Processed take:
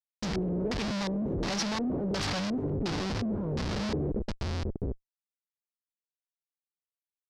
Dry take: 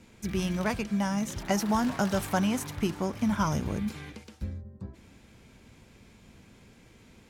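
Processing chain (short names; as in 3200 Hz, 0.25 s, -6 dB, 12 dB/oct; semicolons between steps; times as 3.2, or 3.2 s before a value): Schmitt trigger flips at -42.5 dBFS; LFO low-pass square 1.4 Hz 420–5000 Hz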